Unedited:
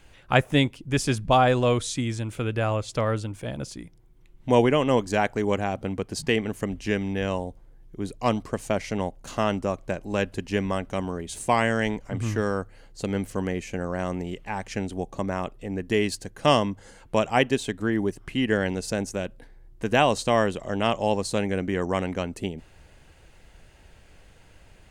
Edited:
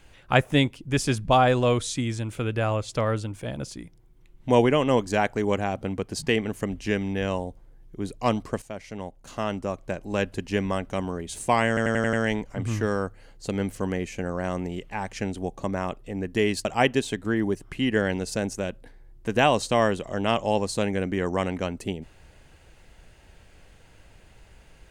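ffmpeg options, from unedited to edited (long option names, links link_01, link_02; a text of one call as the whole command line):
ffmpeg -i in.wav -filter_complex "[0:a]asplit=8[link_01][link_02][link_03][link_04][link_05][link_06][link_07][link_08];[link_01]atrim=end=8.62,asetpts=PTS-STARTPTS,afade=type=out:start_time=8.616:duration=0.004:curve=hsin:silence=0.223872[link_09];[link_02]atrim=start=8.62:end=11.772,asetpts=PTS-STARTPTS,afade=type=in:duration=1.64:silence=0.223872[link_10];[link_03]atrim=start=11.678:end=11.772[link_11];[link_04]atrim=start=11.678:end=11.772[link_12];[link_05]atrim=start=11.678:end=11.772[link_13];[link_06]atrim=start=11.678:end=11.772[link_14];[link_07]atrim=start=11.678:end=16.202[link_15];[link_08]atrim=start=17.208[link_16];[link_09][link_10]concat=n=2:v=0:a=1[link_17];[link_17][link_11]acrossfade=duration=0.004:curve1=hsin:curve2=hsin[link_18];[link_18][link_12]acrossfade=duration=0.004:curve1=hsin:curve2=hsin[link_19];[link_19][link_13]acrossfade=duration=0.004:curve1=hsin:curve2=hsin[link_20];[link_20][link_14]acrossfade=duration=0.004:curve1=hsin:curve2=hsin[link_21];[link_21][link_15]acrossfade=duration=0.004:curve1=hsin:curve2=hsin[link_22];[link_22][link_16]acrossfade=duration=0.004:curve1=hsin:curve2=hsin" out.wav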